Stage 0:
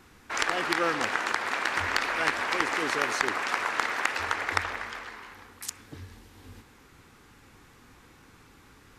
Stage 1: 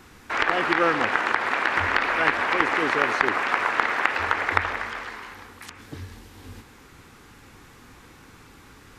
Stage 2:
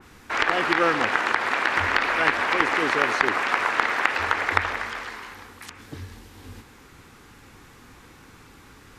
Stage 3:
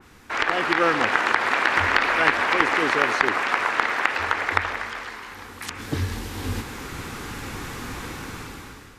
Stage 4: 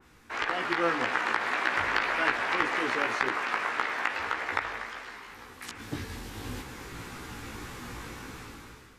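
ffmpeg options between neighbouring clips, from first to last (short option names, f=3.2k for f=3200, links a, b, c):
-filter_complex "[0:a]acrossover=split=3300[a][b];[b]acompressor=threshold=-52dB:ratio=4:attack=1:release=60[c];[a][c]amix=inputs=2:normalize=0,volume=6dB"
-af "adynamicequalizer=threshold=0.0141:dfrequency=3100:dqfactor=0.7:tfrequency=3100:tqfactor=0.7:attack=5:release=100:ratio=0.375:range=2:mode=boostabove:tftype=highshelf"
-af "dynaudnorm=f=350:g=5:m=16.5dB,volume=-1dB"
-af "flanger=delay=15.5:depth=2.3:speed=1.8,volume=-4.5dB"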